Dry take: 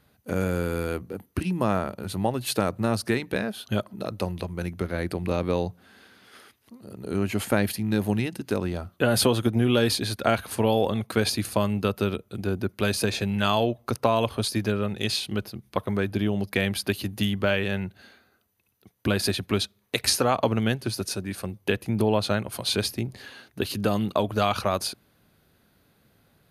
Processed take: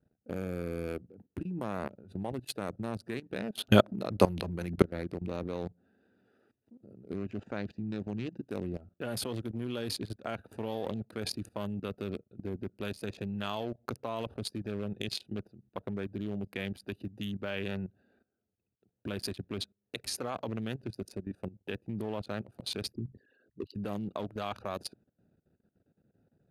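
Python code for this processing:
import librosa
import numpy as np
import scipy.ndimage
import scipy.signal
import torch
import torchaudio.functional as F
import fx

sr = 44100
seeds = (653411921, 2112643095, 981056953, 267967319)

y = fx.steep_lowpass(x, sr, hz=6900.0, slope=36, at=(7.16, 8.46))
y = fx.envelope_sharpen(y, sr, power=3.0, at=(22.92, 23.75))
y = fx.edit(y, sr, fx.clip_gain(start_s=3.55, length_s=1.27, db=11.5), tone=tone)
y = fx.wiener(y, sr, points=41)
y = fx.low_shelf(y, sr, hz=73.0, db=-12.0)
y = fx.level_steps(y, sr, step_db=17)
y = F.gain(torch.from_numpy(y), -1.5).numpy()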